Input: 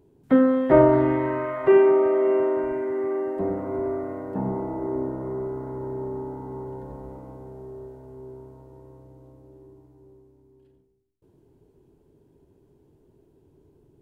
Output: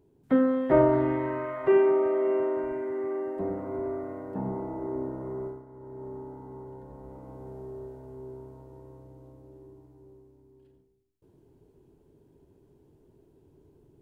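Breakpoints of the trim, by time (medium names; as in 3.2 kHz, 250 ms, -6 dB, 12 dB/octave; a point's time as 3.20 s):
5.47 s -5 dB
5.66 s -16.5 dB
6.09 s -8 dB
6.90 s -8 dB
7.49 s -1 dB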